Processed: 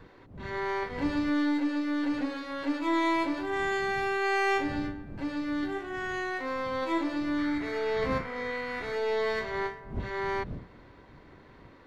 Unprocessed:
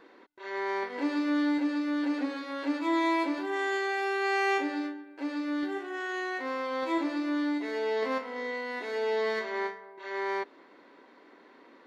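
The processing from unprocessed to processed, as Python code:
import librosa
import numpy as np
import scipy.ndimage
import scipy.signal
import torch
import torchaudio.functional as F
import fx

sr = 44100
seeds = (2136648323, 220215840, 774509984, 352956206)

y = np.where(x < 0.0, 10.0 ** (-3.0 / 20.0) * x, x)
y = fx.dmg_wind(y, sr, seeds[0], corner_hz=180.0, level_db=-47.0)
y = fx.spec_paint(y, sr, seeds[1], shape='noise', start_s=7.38, length_s=1.58, low_hz=1100.0, high_hz=2400.0, level_db=-47.0)
y = y * librosa.db_to_amplitude(1.5)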